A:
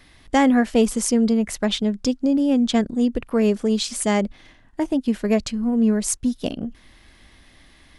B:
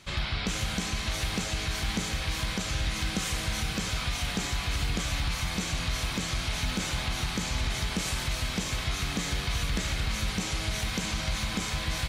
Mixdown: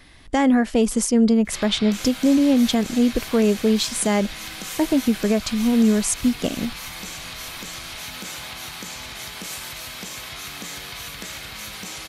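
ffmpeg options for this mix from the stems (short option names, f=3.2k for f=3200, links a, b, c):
-filter_complex "[0:a]volume=2.5dB[a];[1:a]highpass=f=400:p=1,equalizer=f=13k:t=o:w=0.48:g=12.5,adelay=1450,volume=-1dB[b];[a][b]amix=inputs=2:normalize=0,alimiter=limit=-9dB:level=0:latency=1:release=138"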